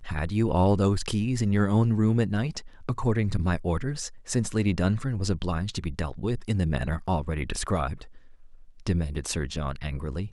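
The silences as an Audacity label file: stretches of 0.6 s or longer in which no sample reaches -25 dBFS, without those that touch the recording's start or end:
7.930000	8.870000	silence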